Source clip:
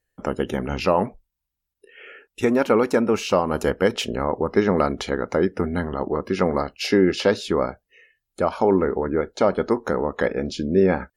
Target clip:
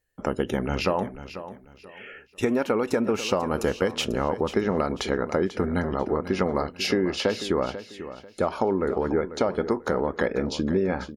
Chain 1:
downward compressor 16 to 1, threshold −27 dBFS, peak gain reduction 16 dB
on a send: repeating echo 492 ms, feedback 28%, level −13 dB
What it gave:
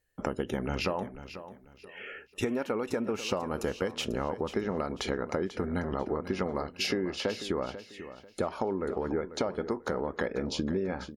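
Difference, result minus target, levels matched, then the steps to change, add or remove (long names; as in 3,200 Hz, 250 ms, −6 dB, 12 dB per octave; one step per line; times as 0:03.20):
downward compressor: peak gain reduction +7.5 dB
change: downward compressor 16 to 1, threshold −19 dBFS, peak gain reduction 8.5 dB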